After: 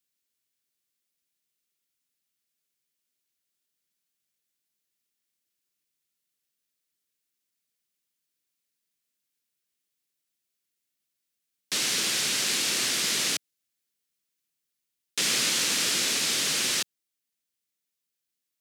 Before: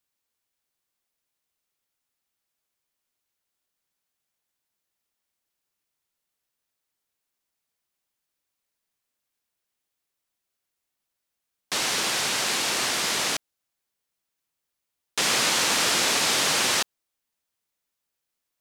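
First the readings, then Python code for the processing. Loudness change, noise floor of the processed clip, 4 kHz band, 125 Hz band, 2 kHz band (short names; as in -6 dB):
-2.0 dB, -84 dBFS, -1.5 dB, -3.5 dB, -4.0 dB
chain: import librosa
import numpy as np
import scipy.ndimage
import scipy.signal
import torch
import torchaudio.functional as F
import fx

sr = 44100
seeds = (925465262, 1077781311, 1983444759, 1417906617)

y = scipy.signal.sosfilt(scipy.signal.butter(2, 130.0, 'highpass', fs=sr, output='sos'), x)
y = fx.peak_eq(y, sr, hz=850.0, db=-13.0, octaves=1.6)
y = fx.rider(y, sr, range_db=10, speed_s=2.0)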